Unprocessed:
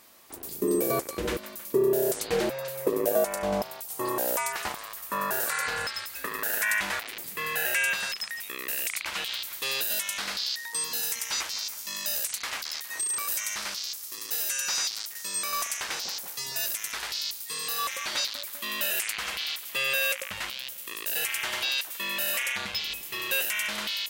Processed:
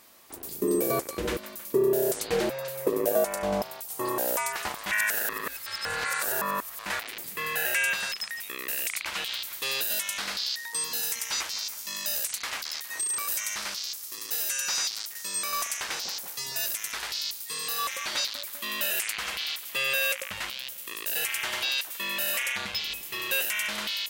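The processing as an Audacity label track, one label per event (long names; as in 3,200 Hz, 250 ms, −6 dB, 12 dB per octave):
4.860000	6.860000	reverse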